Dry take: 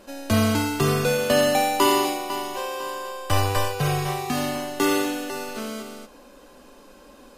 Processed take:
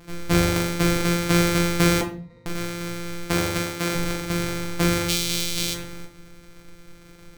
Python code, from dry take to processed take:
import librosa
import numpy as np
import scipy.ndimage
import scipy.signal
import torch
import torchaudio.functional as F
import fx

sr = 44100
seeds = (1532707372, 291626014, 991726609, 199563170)

y = np.r_[np.sort(x[:len(x) // 256 * 256].reshape(-1, 256), axis=1).ravel(), x[len(x) // 256 * 256:]]
y = fx.octave_resonator(y, sr, note='A#', decay_s=0.24, at=(2.01, 2.46))
y = fx.highpass(y, sr, hz=fx.line((3.23, 130.0), (3.94, 340.0)), slope=6, at=(3.23, 3.94), fade=0.02)
y = fx.high_shelf_res(y, sr, hz=2300.0, db=12.5, q=1.5, at=(5.08, 5.73), fade=0.02)
y = fx.room_shoebox(y, sr, seeds[0], volume_m3=36.0, walls='mixed', distance_m=0.42)